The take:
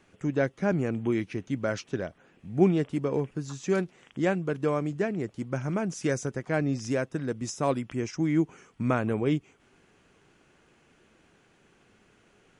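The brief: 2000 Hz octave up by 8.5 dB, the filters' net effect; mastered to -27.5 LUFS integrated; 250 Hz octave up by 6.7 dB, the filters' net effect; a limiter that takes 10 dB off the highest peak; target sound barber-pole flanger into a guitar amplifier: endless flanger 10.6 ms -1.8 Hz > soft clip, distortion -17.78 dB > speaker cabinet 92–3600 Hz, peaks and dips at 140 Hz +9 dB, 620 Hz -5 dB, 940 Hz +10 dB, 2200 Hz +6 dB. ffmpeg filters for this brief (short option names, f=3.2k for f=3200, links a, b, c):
-filter_complex "[0:a]equalizer=f=250:t=o:g=8,equalizer=f=2k:t=o:g=7.5,alimiter=limit=-16.5dB:level=0:latency=1,asplit=2[a][b];[b]adelay=10.6,afreqshift=-1.8[c];[a][c]amix=inputs=2:normalize=1,asoftclip=threshold=-21.5dB,highpass=92,equalizer=f=140:t=q:w=4:g=9,equalizer=f=620:t=q:w=4:g=-5,equalizer=f=940:t=q:w=4:g=10,equalizer=f=2.2k:t=q:w=4:g=6,lowpass=f=3.6k:w=0.5412,lowpass=f=3.6k:w=1.3066,volume=3dB"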